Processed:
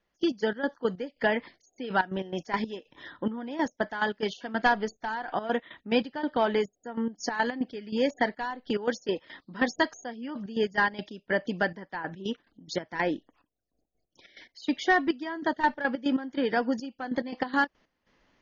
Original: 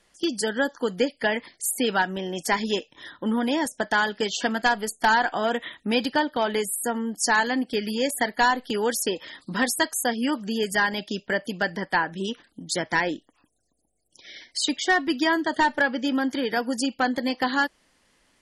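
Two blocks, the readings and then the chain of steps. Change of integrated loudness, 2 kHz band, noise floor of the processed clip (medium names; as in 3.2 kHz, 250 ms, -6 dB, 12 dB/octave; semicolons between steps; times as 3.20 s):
-5.0 dB, -5.5 dB, -79 dBFS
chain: low-pass 1.9 kHz 6 dB/octave; trance gate "..x.x.x.x..xxxx." 142 bpm -12 dB; AC-3 48 kbps 48 kHz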